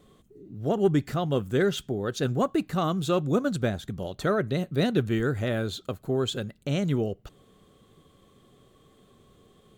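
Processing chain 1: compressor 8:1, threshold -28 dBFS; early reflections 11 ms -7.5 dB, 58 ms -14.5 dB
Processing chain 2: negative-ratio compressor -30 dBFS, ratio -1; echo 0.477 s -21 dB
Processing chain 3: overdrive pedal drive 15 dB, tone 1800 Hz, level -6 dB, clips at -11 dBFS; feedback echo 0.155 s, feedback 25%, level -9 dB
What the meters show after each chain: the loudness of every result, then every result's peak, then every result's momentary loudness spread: -33.0, -31.5, -25.0 LUFS; -19.0, -15.0, -12.0 dBFS; 4, 5, 7 LU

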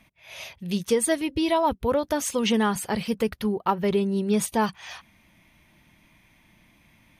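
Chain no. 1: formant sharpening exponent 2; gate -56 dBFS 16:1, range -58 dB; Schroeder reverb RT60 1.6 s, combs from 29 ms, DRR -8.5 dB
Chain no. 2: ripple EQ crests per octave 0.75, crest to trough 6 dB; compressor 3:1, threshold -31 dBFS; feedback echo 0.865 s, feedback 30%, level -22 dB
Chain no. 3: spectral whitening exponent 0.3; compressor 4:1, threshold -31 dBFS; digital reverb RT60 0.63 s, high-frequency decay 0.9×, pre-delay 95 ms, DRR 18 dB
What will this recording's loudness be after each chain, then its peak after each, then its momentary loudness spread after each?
-16.0, -33.0, -33.5 LUFS; -2.0, -18.0, -15.0 dBFS; 11, 10, 8 LU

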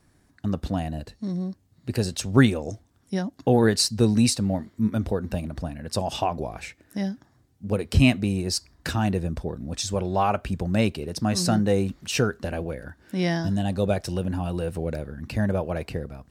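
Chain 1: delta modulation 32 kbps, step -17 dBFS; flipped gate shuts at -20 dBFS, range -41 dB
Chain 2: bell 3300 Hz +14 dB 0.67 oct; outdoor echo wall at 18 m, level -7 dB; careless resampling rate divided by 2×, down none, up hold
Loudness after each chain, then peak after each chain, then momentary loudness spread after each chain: -29.5, -23.5 LUFS; -13.5, -1.0 dBFS; 18, 14 LU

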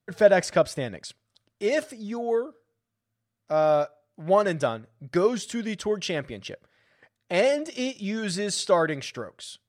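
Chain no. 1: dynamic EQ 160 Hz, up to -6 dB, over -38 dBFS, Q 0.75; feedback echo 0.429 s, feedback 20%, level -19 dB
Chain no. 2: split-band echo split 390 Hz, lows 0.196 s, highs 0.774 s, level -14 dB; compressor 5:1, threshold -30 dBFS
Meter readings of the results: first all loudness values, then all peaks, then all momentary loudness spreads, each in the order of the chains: -27.0, -35.0 LUFS; -7.0, -19.5 dBFS; 15, 9 LU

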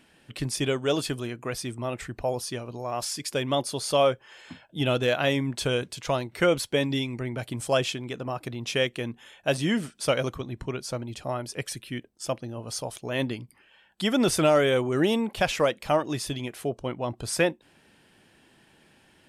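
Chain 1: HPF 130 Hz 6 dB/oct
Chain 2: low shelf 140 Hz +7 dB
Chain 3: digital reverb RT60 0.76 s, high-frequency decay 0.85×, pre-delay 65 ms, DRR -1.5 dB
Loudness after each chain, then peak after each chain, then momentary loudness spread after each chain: -28.0, -27.0, -24.0 LUFS; -9.5, -10.0, -5.0 dBFS; 11, 11, 11 LU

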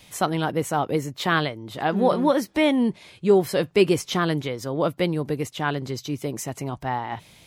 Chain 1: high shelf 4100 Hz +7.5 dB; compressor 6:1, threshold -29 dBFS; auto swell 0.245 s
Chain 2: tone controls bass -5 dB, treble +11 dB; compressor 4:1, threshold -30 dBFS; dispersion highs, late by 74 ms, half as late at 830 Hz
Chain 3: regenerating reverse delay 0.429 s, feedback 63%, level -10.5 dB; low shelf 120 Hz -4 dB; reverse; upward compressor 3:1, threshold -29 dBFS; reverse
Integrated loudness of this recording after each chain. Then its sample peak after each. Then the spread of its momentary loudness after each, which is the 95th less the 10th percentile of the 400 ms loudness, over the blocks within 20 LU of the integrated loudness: -36.0, -32.5, -24.0 LUFS; -20.0, -17.0, -6.0 dBFS; 7, 3, 9 LU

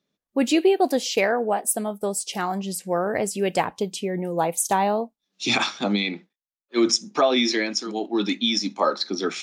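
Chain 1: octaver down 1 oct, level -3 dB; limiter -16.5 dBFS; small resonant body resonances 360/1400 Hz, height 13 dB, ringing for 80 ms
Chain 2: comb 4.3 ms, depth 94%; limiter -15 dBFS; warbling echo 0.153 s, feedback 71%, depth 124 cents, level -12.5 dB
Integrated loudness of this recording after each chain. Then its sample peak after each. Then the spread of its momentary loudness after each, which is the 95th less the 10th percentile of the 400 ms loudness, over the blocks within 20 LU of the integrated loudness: -23.5, -24.5 LUFS; -7.5, -13.0 dBFS; 8, 5 LU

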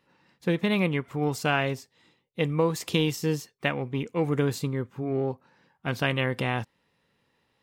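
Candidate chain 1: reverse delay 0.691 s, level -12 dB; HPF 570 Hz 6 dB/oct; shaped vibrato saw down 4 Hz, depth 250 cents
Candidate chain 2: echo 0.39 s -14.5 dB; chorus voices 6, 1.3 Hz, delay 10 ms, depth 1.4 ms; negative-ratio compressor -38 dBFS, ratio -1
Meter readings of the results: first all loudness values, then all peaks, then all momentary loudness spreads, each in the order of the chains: -31.5, -37.5 LUFS; -10.0, -15.0 dBFS; 14, 9 LU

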